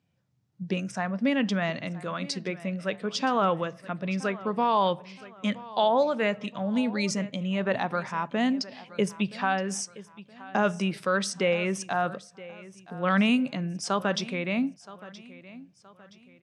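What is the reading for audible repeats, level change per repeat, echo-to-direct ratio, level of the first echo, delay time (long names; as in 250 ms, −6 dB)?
3, −8.0 dB, −18.0 dB, −18.5 dB, 972 ms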